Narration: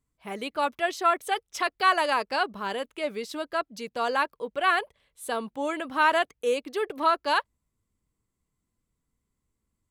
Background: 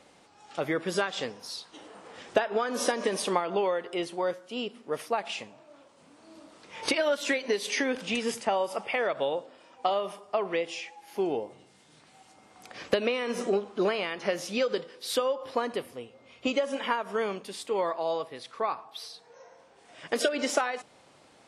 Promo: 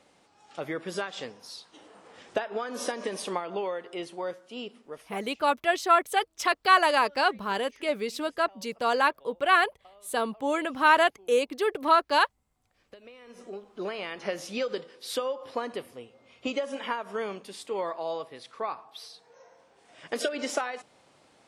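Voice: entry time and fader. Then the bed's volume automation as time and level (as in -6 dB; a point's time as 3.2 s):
4.85 s, +2.0 dB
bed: 4.77 s -4.5 dB
5.51 s -28 dB
12.78 s -28 dB
14.1 s -3 dB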